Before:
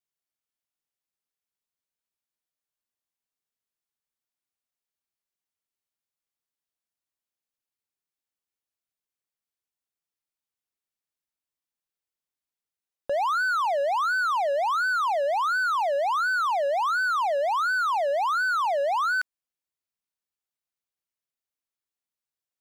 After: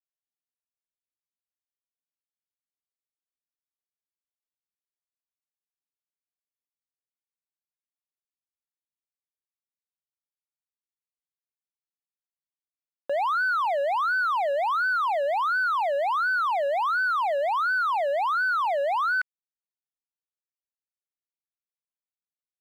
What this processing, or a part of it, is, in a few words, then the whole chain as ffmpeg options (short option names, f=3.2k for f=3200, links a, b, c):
pocket radio on a weak battery: -af "highpass=260,lowpass=3.1k,aeval=exprs='sgn(val(0))*max(abs(val(0))-0.00316,0)':c=same,equalizer=f=2.1k:t=o:w=0.46:g=5.5"